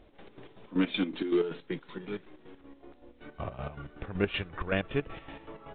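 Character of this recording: chopped level 5.3 Hz, depth 65%, duty 50%; A-law

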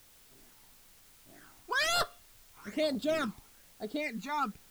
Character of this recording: phasing stages 12, 1.1 Hz, lowest notch 490–2300 Hz; a quantiser's noise floor 10-bit, dither triangular

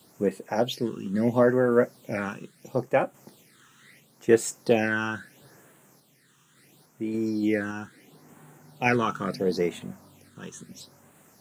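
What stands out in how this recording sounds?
phasing stages 8, 0.74 Hz, lowest notch 610–5000 Hz; a quantiser's noise floor 12-bit, dither none; random-step tremolo

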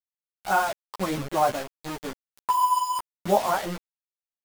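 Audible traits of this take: tremolo triangle 0.96 Hz, depth 80%; a quantiser's noise floor 6-bit, dither none; a shimmering, thickened sound

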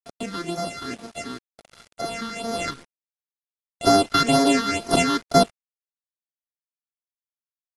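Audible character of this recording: a buzz of ramps at a fixed pitch in blocks of 64 samples; phasing stages 6, 2.1 Hz, lowest notch 620–2700 Hz; a quantiser's noise floor 8-bit, dither none; AAC

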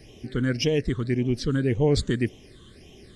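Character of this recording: phasing stages 8, 1.8 Hz, lowest notch 700–1400 Hz

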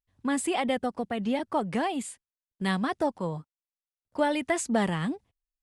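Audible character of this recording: noise floor -96 dBFS; spectral tilt -4.5 dB/octave

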